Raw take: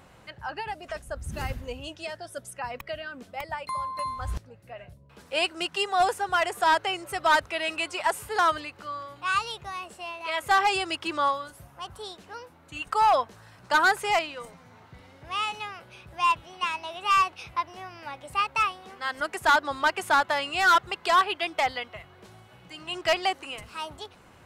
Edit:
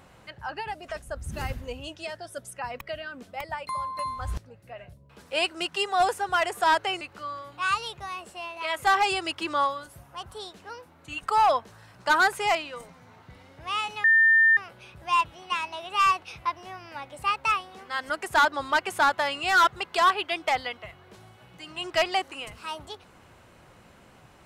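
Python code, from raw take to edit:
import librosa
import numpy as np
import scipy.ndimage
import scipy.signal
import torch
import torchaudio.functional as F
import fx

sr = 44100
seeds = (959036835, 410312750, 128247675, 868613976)

y = fx.edit(x, sr, fx.cut(start_s=7.01, length_s=1.64),
    fx.insert_tone(at_s=15.68, length_s=0.53, hz=1800.0, db=-15.0), tone=tone)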